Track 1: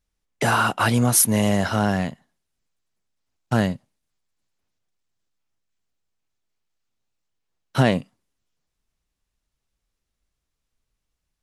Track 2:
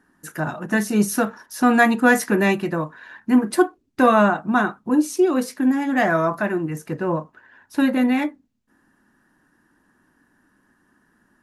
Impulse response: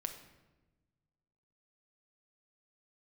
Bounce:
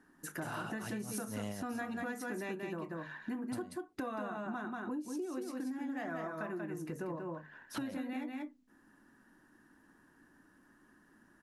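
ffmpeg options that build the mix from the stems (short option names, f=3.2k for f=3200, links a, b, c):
-filter_complex "[0:a]volume=-9dB[a];[1:a]equalizer=f=300:t=o:w=0.84:g=3,bandreject=f=50:t=h:w=6,bandreject=f=100:t=h:w=6,bandreject=f=150:t=h:w=6,bandreject=f=200:t=h:w=6,bandreject=f=250:t=h:w=6,acompressor=threshold=-40dB:ratio=1.5,volume=-5dB,asplit=3[b][c][d];[c]volume=-4.5dB[e];[d]apad=whole_len=503983[f];[a][f]sidechaincompress=threshold=-45dB:ratio=8:attack=8.9:release=154[g];[e]aecho=0:1:186:1[h];[g][b][h]amix=inputs=3:normalize=0,acompressor=threshold=-37dB:ratio=6"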